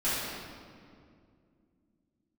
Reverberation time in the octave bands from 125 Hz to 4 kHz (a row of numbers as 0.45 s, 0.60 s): 3.2 s, 3.4 s, 2.6 s, 2.0 s, 1.7 s, 1.4 s